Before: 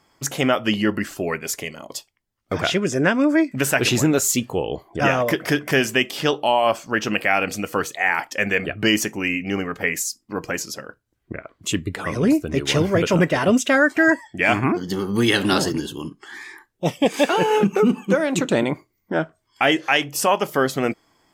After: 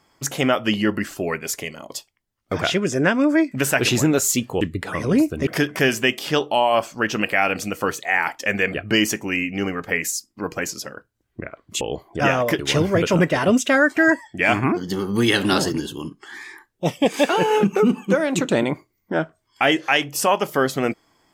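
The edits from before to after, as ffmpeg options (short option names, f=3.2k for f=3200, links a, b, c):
-filter_complex "[0:a]asplit=5[a][b][c][d][e];[a]atrim=end=4.612[f];[b]atrim=start=11.728:end=12.592[g];[c]atrim=start=5.388:end=11.732[h];[d]atrim=start=4.608:end=5.392[i];[e]atrim=start=12.588[j];[f][g]acrossfade=d=0.004:c1=hsin:c2=hsin[k];[k][h]acrossfade=d=0.004:c1=hsin:c2=hsin[l];[l][i]acrossfade=d=0.004:c1=hsin:c2=hsin[m];[m][j]acrossfade=d=0.004:c1=hsin:c2=hsin"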